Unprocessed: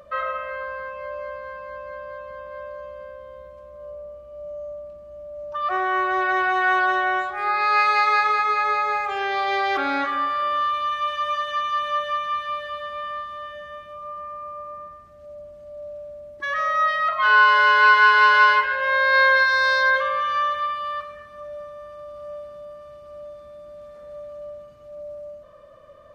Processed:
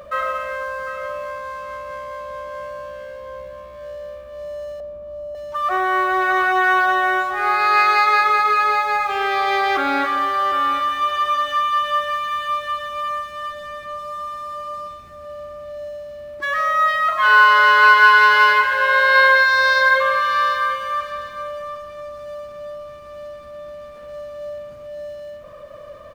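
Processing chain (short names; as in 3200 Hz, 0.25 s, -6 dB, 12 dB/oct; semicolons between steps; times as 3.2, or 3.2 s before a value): G.711 law mismatch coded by mu; 4.8–5.35 inverse Chebyshev low-pass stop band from 4300 Hz, stop band 60 dB; on a send: feedback echo 0.75 s, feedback 15%, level -11 dB; on the sum: gain +3 dB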